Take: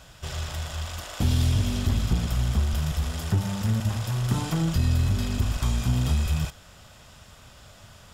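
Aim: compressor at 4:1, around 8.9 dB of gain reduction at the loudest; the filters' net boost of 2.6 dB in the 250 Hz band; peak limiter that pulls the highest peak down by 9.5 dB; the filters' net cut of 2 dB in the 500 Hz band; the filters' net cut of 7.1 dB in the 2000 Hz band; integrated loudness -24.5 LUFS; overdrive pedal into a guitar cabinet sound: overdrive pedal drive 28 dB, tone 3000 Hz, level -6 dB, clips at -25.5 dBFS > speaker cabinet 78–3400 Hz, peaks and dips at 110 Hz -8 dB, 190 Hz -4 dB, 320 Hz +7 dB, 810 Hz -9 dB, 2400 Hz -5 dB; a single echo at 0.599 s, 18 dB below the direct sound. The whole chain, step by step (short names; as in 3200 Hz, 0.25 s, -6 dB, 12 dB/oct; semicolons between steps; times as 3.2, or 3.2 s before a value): bell 250 Hz +5.5 dB; bell 500 Hz -7.5 dB; bell 2000 Hz -7 dB; compressor 4:1, threshold -28 dBFS; limiter -27 dBFS; echo 0.599 s -18 dB; overdrive pedal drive 28 dB, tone 3000 Hz, level -6 dB, clips at -25.5 dBFS; speaker cabinet 78–3400 Hz, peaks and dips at 110 Hz -8 dB, 190 Hz -4 dB, 320 Hz +7 dB, 810 Hz -9 dB, 2400 Hz -5 dB; gain +12 dB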